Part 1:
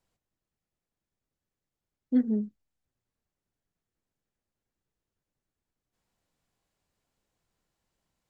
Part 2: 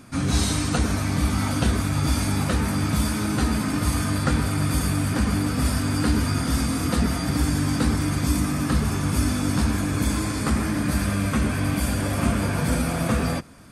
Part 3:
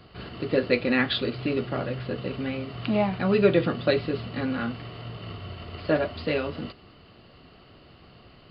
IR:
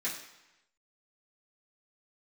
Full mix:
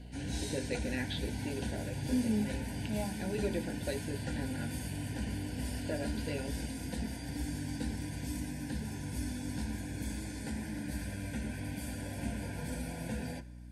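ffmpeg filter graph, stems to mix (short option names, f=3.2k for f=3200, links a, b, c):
-filter_complex "[0:a]alimiter=level_in=2dB:limit=-24dB:level=0:latency=1,volume=-2dB,volume=0.5dB[a];[1:a]volume=-16.5dB,asplit=2[b][c];[c]volume=-14.5dB[d];[2:a]acompressor=threshold=-45dB:ratio=1.5,volume=-5.5dB[e];[3:a]atrim=start_sample=2205[f];[d][f]afir=irnorm=-1:irlink=0[g];[a][b][e][g]amix=inputs=4:normalize=0,aeval=exprs='val(0)+0.00447*(sin(2*PI*60*n/s)+sin(2*PI*2*60*n/s)/2+sin(2*PI*3*60*n/s)/3+sin(2*PI*4*60*n/s)/4+sin(2*PI*5*60*n/s)/5)':c=same,asuperstop=centerf=1200:order=20:qfactor=3"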